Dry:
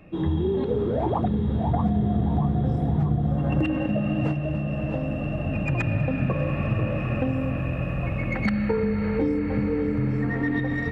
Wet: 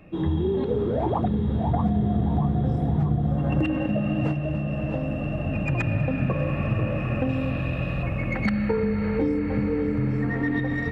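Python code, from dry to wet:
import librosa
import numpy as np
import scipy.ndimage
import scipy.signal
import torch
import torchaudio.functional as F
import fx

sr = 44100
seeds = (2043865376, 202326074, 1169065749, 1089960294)

y = fx.peak_eq(x, sr, hz=3900.0, db=12.5, octaves=0.71, at=(7.29, 8.03))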